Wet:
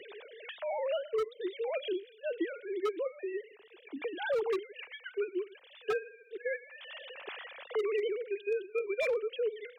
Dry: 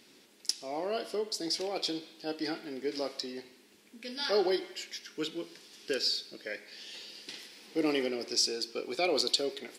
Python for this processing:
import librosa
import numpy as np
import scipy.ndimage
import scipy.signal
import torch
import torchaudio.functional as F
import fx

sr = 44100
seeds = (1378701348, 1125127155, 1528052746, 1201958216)

y = fx.sine_speech(x, sr)
y = 10.0 ** (-23.0 / 20.0) * (np.abs((y / 10.0 ** (-23.0 / 20.0) + 3.0) % 4.0 - 2.0) - 1.0)
y = fx.band_squash(y, sr, depth_pct=70)